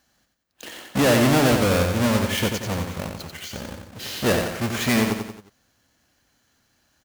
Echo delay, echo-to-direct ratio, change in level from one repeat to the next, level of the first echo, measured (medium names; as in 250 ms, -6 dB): 90 ms, -4.5 dB, -6.5 dB, -5.5 dB